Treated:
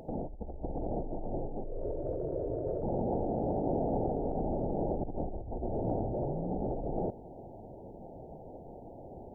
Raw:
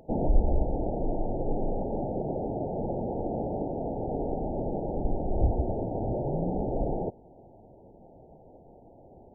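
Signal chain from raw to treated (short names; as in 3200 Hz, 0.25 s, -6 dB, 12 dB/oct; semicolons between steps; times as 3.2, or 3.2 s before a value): negative-ratio compressor -34 dBFS, ratio -1; 1.64–2.83 fixed phaser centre 800 Hz, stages 6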